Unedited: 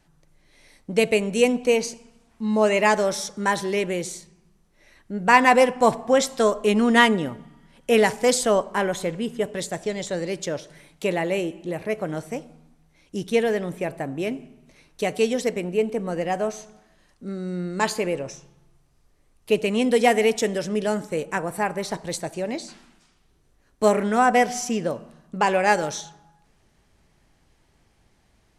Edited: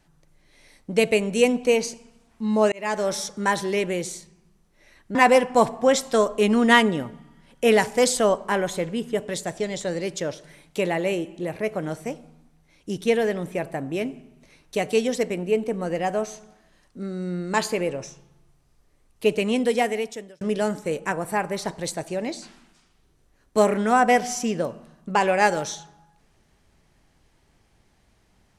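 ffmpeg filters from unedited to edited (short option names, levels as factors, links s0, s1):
-filter_complex "[0:a]asplit=4[s0][s1][s2][s3];[s0]atrim=end=2.72,asetpts=PTS-STARTPTS,afade=t=out:st=2.716:d=0.004:c=hsin[s4];[s1]atrim=start=2.72:end=5.152,asetpts=PTS-STARTPTS,afade=t=in:d=0.42[s5];[s2]atrim=start=5.408:end=20.67,asetpts=PTS-STARTPTS,afade=t=out:st=14.272:d=0.99[s6];[s3]atrim=start=20.67,asetpts=PTS-STARTPTS,afade=t=in:d=0.004:c=hsin[s7];[s4][s5]concat=n=2:v=0:a=1[s8];[s6][s7]concat=n=2:v=0:a=1[s9];[s8][s9]acrossfade=d=0.004:c1=hsin:c2=hsin"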